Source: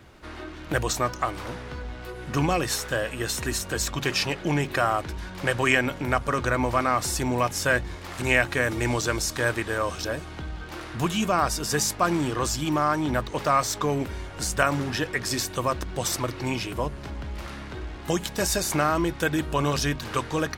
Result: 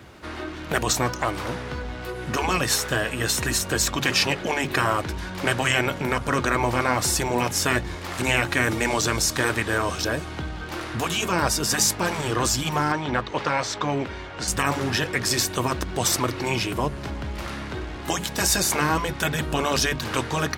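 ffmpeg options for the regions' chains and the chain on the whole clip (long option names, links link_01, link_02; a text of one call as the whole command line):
ffmpeg -i in.wav -filter_complex "[0:a]asettb=1/sr,asplit=3[link_01][link_02][link_03];[link_01]atrim=end=12.924[link_04];[link_02]atrim=start=12.92:end=14.48,asetpts=PTS-STARTPTS,afade=type=in:duration=0.004:curve=qsin,afade=type=out:start_time=1.556:duration=0.004:curve=qsin,lowpass=4300,lowshelf=frequency=330:gain=-7[link_05];[link_03]atrim=start=14.476[link_06];[link_04][link_05]acrossfade=duration=0.004:curve1=hsin:curve2=qsin[link_07];[link_07][link_06]acrossfade=duration=0.004:curve1=qsin:curve2=hsin,afftfilt=real='re*lt(hypot(re,im),0.316)':imag='im*lt(hypot(re,im),0.316)':win_size=1024:overlap=0.75,highpass=63,alimiter=level_in=11.5dB:limit=-1dB:release=50:level=0:latency=1,volume=-6dB" out.wav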